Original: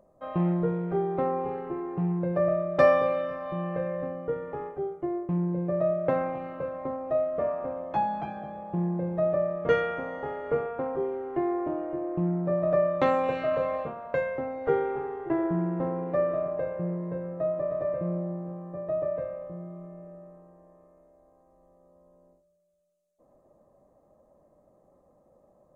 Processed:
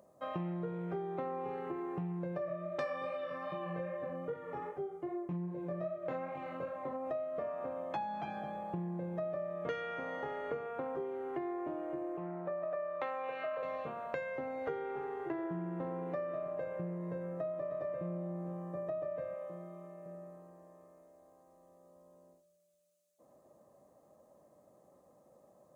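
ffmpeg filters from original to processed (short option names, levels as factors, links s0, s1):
-filter_complex "[0:a]asplit=3[s0][s1][s2];[s0]afade=t=out:st=2.37:d=0.02[s3];[s1]flanger=delay=20:depth=3.1:speed=2.5,afade=t=in:st=2.37:d=0.02,afade=t=out:st=7.04:d=0.02[s4];[s2]afade=t=in:st=7.04:d=0.02[s5];[s3][s4][s5]amix=inputs=3:normalize=0,asettb=1/sr,asplit=3[s6][s7][s8];[s6]atrim=end=12.174[s9];[s7]atrim=start=12.17:end=13.63,asetpts=PTS-STARTPTS,afade=t=in:d=0.004:c=qsin,afade=t=out:st=1.456:d=0.004:c=qsin,acrossover=split=440 2700:gain=0.178 1 0.126[s10][s11][s12];[s10][s11][s12]amix=inputs=3:normalize=0[s13];[s8]atrim=start=13.626[s14];[s9][s13]acrossfade=d=0.004:c1=hsin:c2=qsin[s15];[s15][s14]acrossfade=d=0.004:c1=qsin:c2=hsin,asettb=1/sr,asplit=3[s16][s17][s18];[s16]atrim=end=19.344[s19];[s17]atrim=start=19.34:end=20.06,asetpts=PTS-STARTPTS,afade=t=in:d=0.004:c=qsin,afade=t=out:st=0.716:d=0.004:c=qsin,highpass=f=400:p=1[s20];[s18]atrim=start=20.056[s21];[s19][s20]acrossfade=d=0.004:c1=hsin:c2=qsin[s22];[s22][s21]acrossfade=d=0.004:c1=qsin:c2=hsin,highpass=95,highshelf=f=2100:g=10.5,acompressor=threshold=0.02:ratio=5,volume=0.75"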